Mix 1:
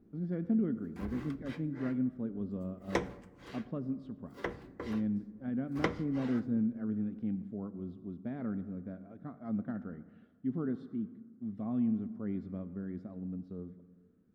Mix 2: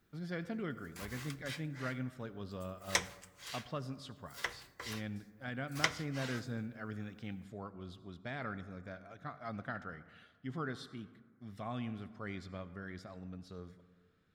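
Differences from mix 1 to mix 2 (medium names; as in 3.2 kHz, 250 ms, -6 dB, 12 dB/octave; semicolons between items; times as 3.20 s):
background -9.5 dB; master: remove FFT filter 140 Hz 0 dB, 220 Hz +13 dB, 690 Hz -4 dB, 7.7 kHz -27 dB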